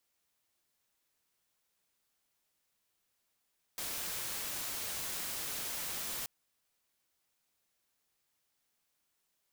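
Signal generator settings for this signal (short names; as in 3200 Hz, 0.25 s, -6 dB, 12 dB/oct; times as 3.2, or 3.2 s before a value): noise white, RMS -39 dBFS 2.48 s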